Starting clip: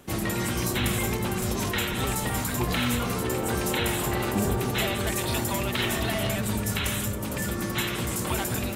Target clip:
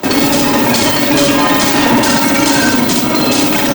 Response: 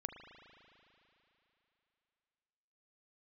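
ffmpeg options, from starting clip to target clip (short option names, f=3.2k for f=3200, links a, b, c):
-filter_complex "[0:a]highpass=55,equalizer=f=5.5k:w=0.68:g=-5.5,aecho=1:1:7.4:0.61,acrossover=split=110|2100[a][b][c];[a]acontrast=81[d];[d][b][c]amix=inputs=3:normalize=0,asoftclip=type=tanh:threshold=-21dB,aexciter=amount=4.7:drive=6.3:freq=6.8k,apsyclip=25dB,asplit=2[e][f];[f]aecho=0:1:152:0.631[g];[e][g]amix=inputs=2:normalize=0,asetrate=103194,aresample=44100,volume=-7dB"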